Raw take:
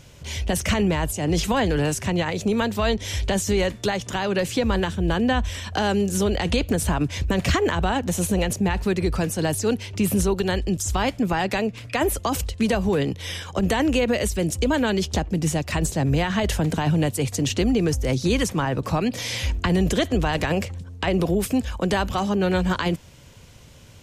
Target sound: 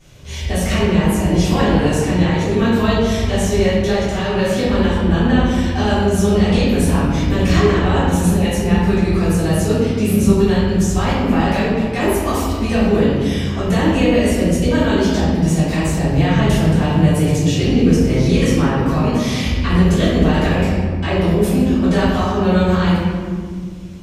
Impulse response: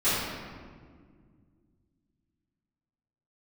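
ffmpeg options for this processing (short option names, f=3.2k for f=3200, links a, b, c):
-filter_complex "[1:a]atrim=start_sample=2205[a];[0:a][a]afir=irnorm=-1:irlink=0,volume=-9.5dB"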